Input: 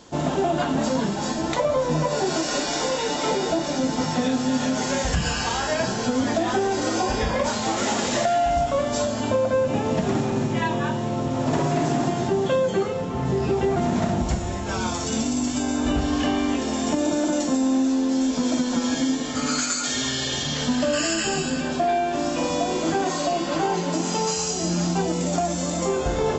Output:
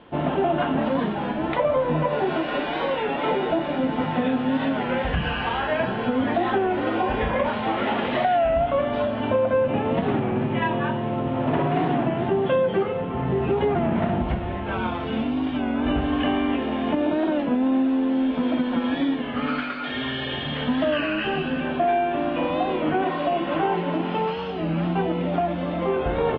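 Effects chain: steep low-pass 3200 Hz 48 dB/oct; low shelf 200 Hz -3 dB; record warp 33 1/3 rpm, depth 100 cents; gain +1 dB

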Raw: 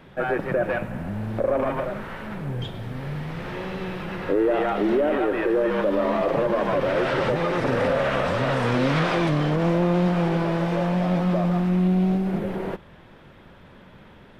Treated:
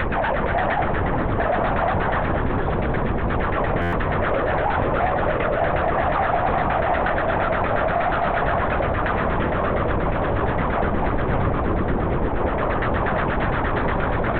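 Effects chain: infinite clipping; LFO low-pass saw down 8.5 Hz 540–1900 Hz; sine folder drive 6 dB, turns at -9 dBFS; frequency shift +130 Hz; on a send: split-band echo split 780 Hz, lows 0.491 s, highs 0.259 s, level -7.5 dB; on the sum: LPC vocoder at 8 kHz whisper; stuck buffer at 3.81, samples 512, times 9; gain -8.5 dB

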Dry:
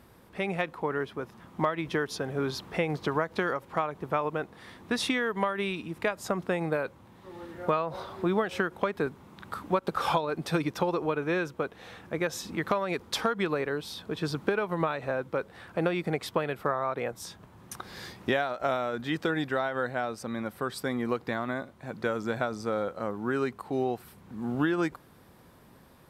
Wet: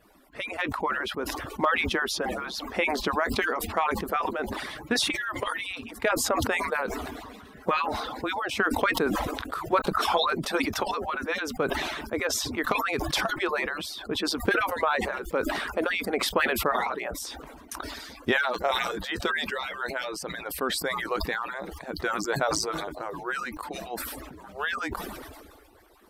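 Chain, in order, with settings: median-filter separation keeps percussive; sustainer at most 32 dB/s; gain +3 dB

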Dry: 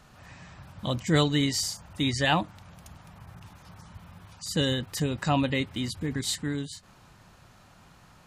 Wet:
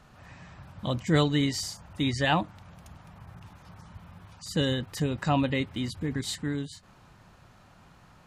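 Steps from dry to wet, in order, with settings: high shelf 3700 Hz -6.5 dB

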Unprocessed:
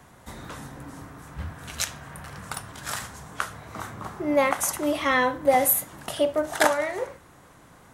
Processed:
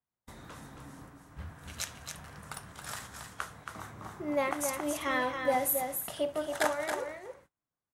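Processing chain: gate -42 dBFS, range -35 dB; on a send: echo 0.274 s -6 dB; on the sum: gain -9 dB

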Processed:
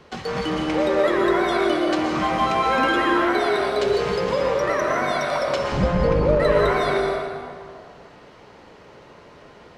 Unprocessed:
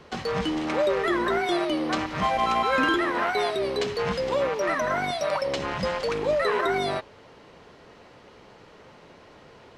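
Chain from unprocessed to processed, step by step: 5.72–6.4 tilt -4 dB/oct; plate-style reverb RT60 2.2 s, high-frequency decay 0.55×, pre-delay 0.105 s, DRR -1 dB

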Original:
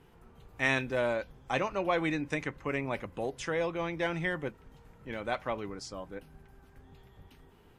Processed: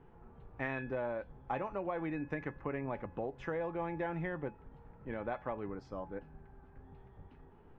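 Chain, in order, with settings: LPF 1400 Hz 12 dB/oct; compressor 6:1, threshold -34 dBFS, peak gain reduction 9 dB; resonator 850 Hz, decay 0.39 s, mix 80%; gain +13.5 dB

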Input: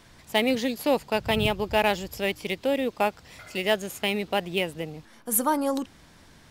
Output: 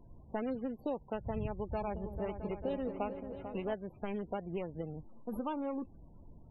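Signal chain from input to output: median filter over 25 samples; low shelf 74 Hz +11.5 dB; compressor 3:1, threshold -31 dBFS, peak gain reduction 10.5 dB; loudest bins only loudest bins 32; 1.52–3.74 repeats that get brighter 0.222 s, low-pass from 400 Hz, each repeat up 2 oct, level -6 dB; gain -4.5 dB

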